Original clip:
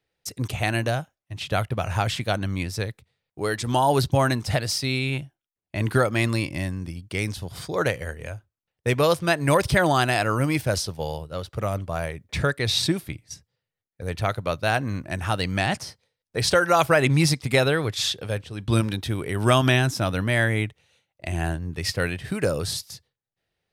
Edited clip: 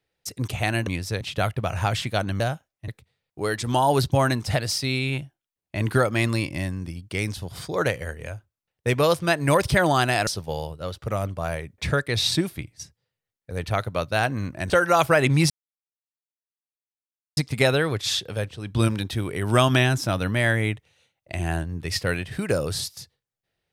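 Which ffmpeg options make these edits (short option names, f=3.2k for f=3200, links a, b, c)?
-filter_complex "[0:a]asplit=8[a][b][c][d][e][f][g][h];[a]atrim=end=0.872[i];[b]atrim=start=2.538:end=2.882[j];[c]atrim=start=1.348:end=2.542[k];[d]atrim=start=0.868:end=1.352[l];[e]atrim=start=2.878:end=10.272[m];[f]atrim=start=10.778:end=15.212[n];[g]atrim=start=16.498:end=17.3,asetpts=PTS-STARTPTS,afade=t=out:st=0.798:d=0.004:c=hsin,apad=pad_dur=1.87[o];[h]atrim=start=17.3,asetpts=PTS-STARTPTS,afade=t=in:d=0.004:c=hsin[p];[i][j]acrossfade=d=0.004:c1=hsin:c2=hsin[q];[q][k]acrossfade=d=0.004:c1=hsin:c2=hsin[r];[r][l]acrossfade=d=0.004:c1=hsin:c2=hsin[s];[s][m]acrossfade=d=0.004:c1=hsin:c2=hsin[t];[t][n]acrossfade=d=0.004:c1=hsin:c2=hsin[u];[o][p]concat=n=2:v=0:a=1[v];[u][v]acrossfade=d=0.004:c1=hsin:c2=hsin"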